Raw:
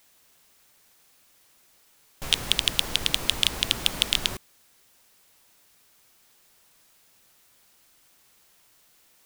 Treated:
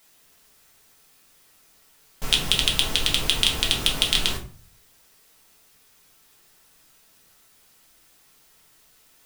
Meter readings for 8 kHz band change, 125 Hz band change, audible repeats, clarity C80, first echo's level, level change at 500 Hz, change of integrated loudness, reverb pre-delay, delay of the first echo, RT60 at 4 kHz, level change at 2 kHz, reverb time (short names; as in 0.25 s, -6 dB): +3.0 dB, +5.5 dB, none, 16.0 dB, none, +4.0 dB, +3.0 dB, 4 ms, none, 0.30 s, +3.0 dB, 0.40 s